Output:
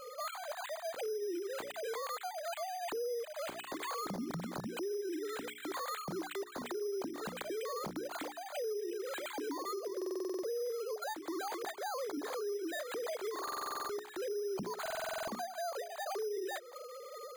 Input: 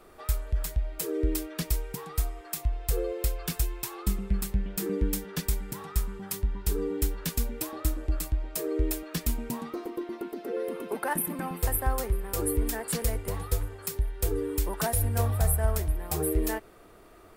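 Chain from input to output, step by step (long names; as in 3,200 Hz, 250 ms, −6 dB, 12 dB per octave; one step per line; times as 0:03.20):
three sine waves on the formant tracks
mains-hum notches 60/120/180/240/300/360/420 Hz
downward compressor 16 to 1, threshold −37 dBFS, peak gain reduction 20 dB
brickwall limiter −37 dBFS, peak gain reduction 8.5 dB
bad sample-rate conversion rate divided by 8×, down filtered, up hold
buffer that repeats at 0:09.97/0:13.43/0:14.81, samples 2,048, times 9
level +4.5 dB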